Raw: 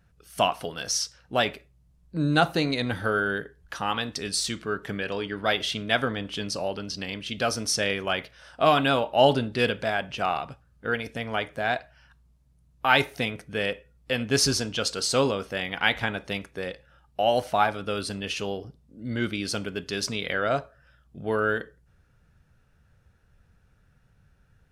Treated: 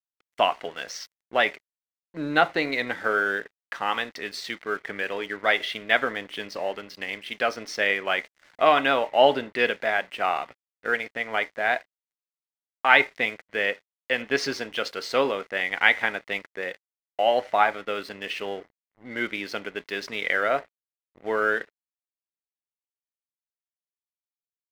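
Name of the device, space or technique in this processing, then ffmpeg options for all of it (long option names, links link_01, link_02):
pocket radio on a weak battery: -af "highpass=350,lowpass=3100,aeval=exprs='sgn(val(0))*max(abs(val(0))-0.00355,0)':channel_layout=same,equalizer=frequency=2000:width_type=o:width=0.32:gain=10,volume=2dB"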